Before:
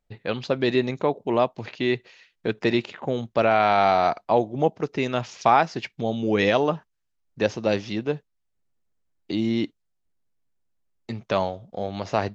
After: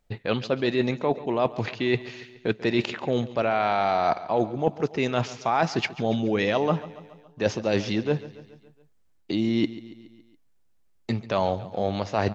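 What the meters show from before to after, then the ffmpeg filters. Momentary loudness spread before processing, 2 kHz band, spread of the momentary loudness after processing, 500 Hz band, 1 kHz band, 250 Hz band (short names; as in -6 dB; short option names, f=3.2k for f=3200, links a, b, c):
12 LU, -1.5 dB, 7 LU, -2.0 dB, -3.5 dB, 0.0 dB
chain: -af "areverse,acompressor=threshold=-28dB:ratio=6,areverse,aecho=1:1:140|280|420|560|700:0.141|0.0805|0.0459|0.0262|0.0149,volume=7.5dB"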